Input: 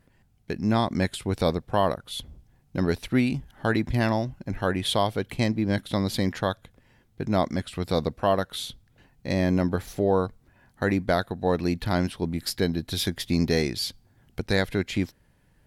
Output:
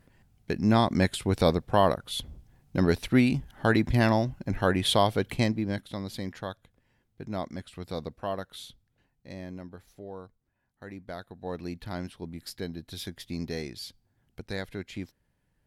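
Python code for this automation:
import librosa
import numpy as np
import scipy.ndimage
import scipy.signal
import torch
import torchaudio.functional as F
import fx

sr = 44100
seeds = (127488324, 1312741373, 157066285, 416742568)

y = fx.gain(x, sr, db=fx.line((5.32, 1.0), (5.95, -10.0), (8.65, -10.0), (9.72, -19.5), (10.85, -19.5), (11.57, -11.0)))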